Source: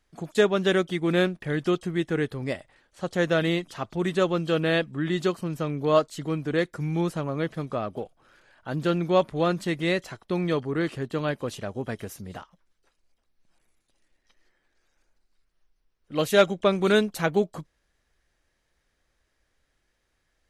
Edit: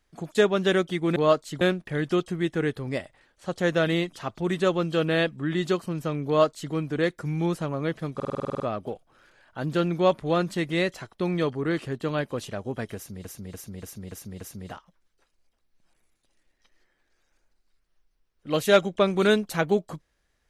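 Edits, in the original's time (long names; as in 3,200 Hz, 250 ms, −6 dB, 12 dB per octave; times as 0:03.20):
0:05.82–0:06.27: duplicate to 0:01.16
0:07.70: stutter 0.05 s, 10 plays
0:12.06–0:12.35: repeat, 6 plays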